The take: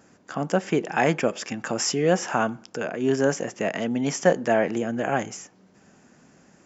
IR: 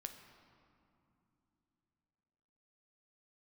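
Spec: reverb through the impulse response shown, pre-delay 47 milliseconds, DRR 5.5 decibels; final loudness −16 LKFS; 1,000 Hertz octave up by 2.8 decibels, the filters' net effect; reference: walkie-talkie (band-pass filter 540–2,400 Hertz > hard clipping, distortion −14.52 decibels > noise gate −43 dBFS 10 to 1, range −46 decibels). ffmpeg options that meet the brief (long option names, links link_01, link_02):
-filter_complex "[0:a]equalizer=frequency=1000:width_type=o:gain=5.5,asplit=2[link_01][link_02];[1:a]atrim=start_sample=2205,adelay=47[link_03];[link_02][link_03]afir=irnorm=-1:irlink=0,volume=-1.5dB[link_04];[link_01][link_04]amix=inputs=2:normalize=0,highpass=540,lowpass=2400,asoftclip=type=hard:threshold=-15.5dB,agate=range=-46dB:threshold=-43dB:ratio=10,volume=11dB"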